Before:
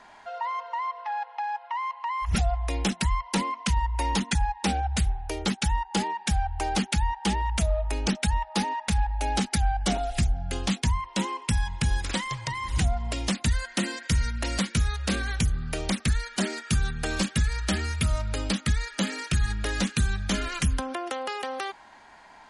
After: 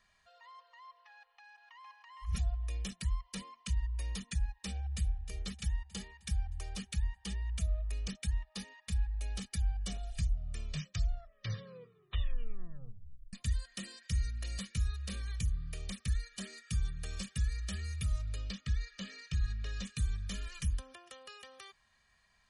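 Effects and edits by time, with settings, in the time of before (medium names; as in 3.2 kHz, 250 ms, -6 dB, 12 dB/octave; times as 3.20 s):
1.11–2.02 s: echo throw 460 ms, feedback 15%, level -5 dB
4.73–5.20 s: echo throw 310 ms, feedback 60%, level -11 dB
10.09 s: tape stop 3.24 s
18.36–19.85 s: low-pass 6.2 kHz 24 dB/octave
whole clip: amplifier tone stack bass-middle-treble 6-0-2; comb 1.7 ms, depth 76%; dynamic bell 450 Hz, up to +5 dB, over -60 dBFS, Q 0.87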